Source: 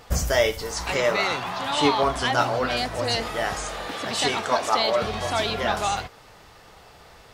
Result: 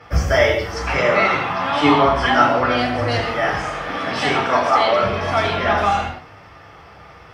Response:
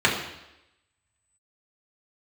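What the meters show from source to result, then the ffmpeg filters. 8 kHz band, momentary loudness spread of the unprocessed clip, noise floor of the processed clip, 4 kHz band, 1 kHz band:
−6.0 dB, 7 LU, −43 dBFS, +1.0 dB, +7.5 dB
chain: -filter_complex "[1:a]atrim=start_sample=2205,atrim=end_sample=6174,asetrate=32634,aresample=44100[link_01];[0:a][link_01]afir=irnorm=-1:irlink=0,volume=-13.5dB"

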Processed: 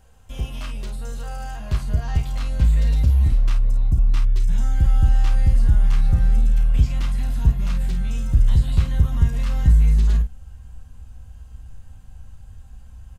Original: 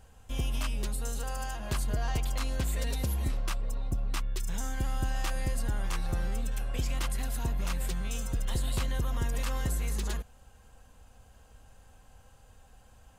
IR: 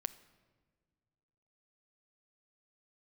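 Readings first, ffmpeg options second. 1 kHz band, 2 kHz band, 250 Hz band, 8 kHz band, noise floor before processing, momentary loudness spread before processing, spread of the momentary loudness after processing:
+1.5 dB, +1.0 dB, +7.5 dB, −4.5 dB, −58 dBFS, 4 LU, 14 LU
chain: -filter_complex "[0:a]asubboost=boost=6.5:cutoff=170,aecho=1:1:13|32|51:0.376|0.376|0.355,acrossover=split=5600[link_01][link_02];[link_02]acompressor=threshold=-51dB:ratio=4:attack=1:release=60[link_03];[link_01][link_03]amix=inputs=2:normalize=0"

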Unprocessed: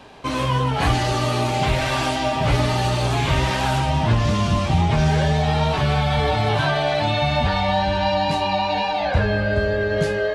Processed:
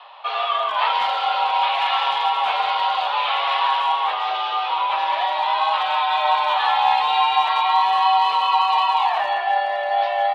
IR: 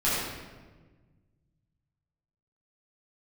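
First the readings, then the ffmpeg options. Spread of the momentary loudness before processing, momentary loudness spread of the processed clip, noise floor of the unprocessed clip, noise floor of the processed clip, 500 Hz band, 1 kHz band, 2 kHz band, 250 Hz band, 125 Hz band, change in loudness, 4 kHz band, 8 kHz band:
2 LU, 4 LU, −23 dBFS, −25 dBFS, −7.5 dB, +6.5 dB, −0.5 dB, below −30 dB, below −40 dB, +1.0 dB, +2.5 dB, below −15 dB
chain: -filter_complex "[0:a]equalizer=frequency=1600:width_type=o:width=1.2:gain=-10.5,highpass=frequency=570:width_type=q:width=0.5412,highpass=frequency=570:width_type=q:width=1.307,lowpass=frequency=3400:width_type=q:width=0.5176,lowpass=frequency=3400:width_type=q:width=0.7071,lowpass=frequency=3400:width_type=q:width=1.932,afreqshift=170,asplit=2[link_01][link_02];[link_02]adelay=190,highpass=300,lowpass=3400,asoftclip=type=hard:threshold=-22.5dB,volume=-9dB[link_03];[link_01][link_03]amix=inputs=2:normalize=0,volume=7.5dB"

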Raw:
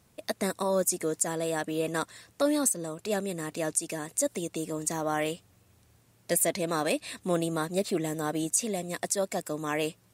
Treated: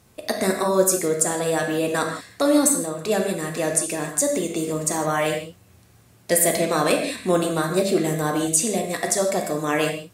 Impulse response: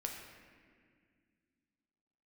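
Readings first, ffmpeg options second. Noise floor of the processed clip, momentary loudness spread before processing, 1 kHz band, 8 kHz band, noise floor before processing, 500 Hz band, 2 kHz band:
−54 dBFS, 7 LU, +8.0 dB, +7.5 dB, −64 dBFS, +8.5 dB, +9.0 dB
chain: -filter_complex "[1:a]atrim=start_sample=2205,atrim=end_sample=6615,asetrate=37044,aresample=44100[link_01];[0:a][link_01]afir=irnorm=-1:irlink=0,volume=8.5dB"

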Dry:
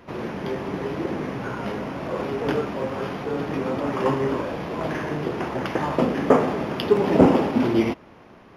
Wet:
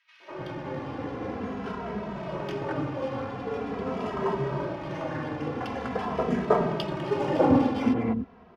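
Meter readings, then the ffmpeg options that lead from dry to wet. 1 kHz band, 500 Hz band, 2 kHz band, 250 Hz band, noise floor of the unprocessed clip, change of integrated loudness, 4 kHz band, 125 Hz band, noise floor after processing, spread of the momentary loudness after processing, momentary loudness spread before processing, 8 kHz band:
−4.0 dB, −6.0 dB, −6.0 dB, −5.0 dB, −48 dBFS, −5.0 dB, −6.0 dB, −4.0 dB, −53 dBFS, 11 LU, 10 LU, can't be measured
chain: -filter_complex "[0:a]acrossover=split=350|2100[link_01][link_02][link_03];[link_02]adelay=200[link_04];[link_01]adelay=300[link_05];[link_05][link_04][link_03]amix=inputs=3:normalize=0,adynamicsmooth=sensitivity=5.5:basefreq=3400,asplit=2[link_06][link_07];[link_07]adelay=2.7,afreqshift=-0.45[link_08];[link_06][link_08]amix=inputs=2:normalize=1"

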